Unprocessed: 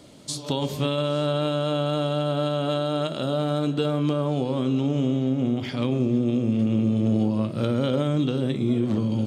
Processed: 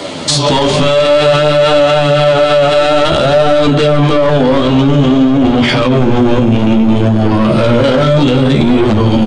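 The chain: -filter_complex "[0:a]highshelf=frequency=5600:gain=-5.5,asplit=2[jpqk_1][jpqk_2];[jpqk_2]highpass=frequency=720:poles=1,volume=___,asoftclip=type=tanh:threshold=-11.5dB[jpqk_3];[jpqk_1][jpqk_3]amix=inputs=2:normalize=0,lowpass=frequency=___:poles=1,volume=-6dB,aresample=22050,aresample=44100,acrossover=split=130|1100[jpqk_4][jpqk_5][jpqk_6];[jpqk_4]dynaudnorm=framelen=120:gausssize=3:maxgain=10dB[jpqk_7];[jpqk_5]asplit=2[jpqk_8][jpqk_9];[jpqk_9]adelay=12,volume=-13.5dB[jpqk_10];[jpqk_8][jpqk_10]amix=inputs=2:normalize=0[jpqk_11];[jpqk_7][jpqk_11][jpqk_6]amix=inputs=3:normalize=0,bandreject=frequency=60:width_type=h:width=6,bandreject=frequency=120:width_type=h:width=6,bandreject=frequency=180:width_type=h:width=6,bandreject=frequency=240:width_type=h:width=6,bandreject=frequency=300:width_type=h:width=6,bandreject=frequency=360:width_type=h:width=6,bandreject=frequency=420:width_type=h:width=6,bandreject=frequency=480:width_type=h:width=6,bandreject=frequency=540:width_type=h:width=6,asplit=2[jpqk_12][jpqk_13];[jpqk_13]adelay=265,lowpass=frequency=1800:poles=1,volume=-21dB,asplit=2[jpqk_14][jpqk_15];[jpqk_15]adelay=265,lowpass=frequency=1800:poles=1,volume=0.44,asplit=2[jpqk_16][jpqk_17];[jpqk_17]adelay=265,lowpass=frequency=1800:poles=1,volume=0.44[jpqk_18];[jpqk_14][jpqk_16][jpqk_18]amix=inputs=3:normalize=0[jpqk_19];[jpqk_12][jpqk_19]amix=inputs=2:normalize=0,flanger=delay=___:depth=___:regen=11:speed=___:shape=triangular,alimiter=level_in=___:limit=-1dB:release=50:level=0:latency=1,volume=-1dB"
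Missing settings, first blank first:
23dB, 3600, 9.9, 9.8, 0.56, 20.5dB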